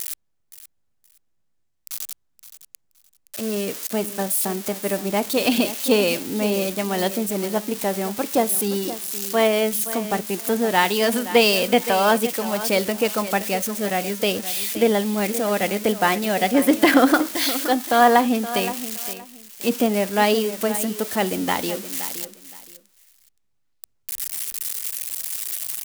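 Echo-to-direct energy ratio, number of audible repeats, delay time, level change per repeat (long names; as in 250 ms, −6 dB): −13.5 dB, 2, 520 ms, −13.5 dB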